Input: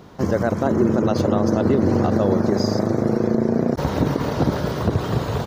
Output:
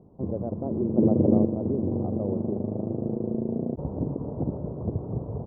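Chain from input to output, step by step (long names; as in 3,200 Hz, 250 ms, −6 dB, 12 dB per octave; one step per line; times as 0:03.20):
Bessel low-pass filter 500 Hz, order 8
0:00.97–0:01.45: parametric band 260 Hz +10 dB 3 octaves
level −8 dB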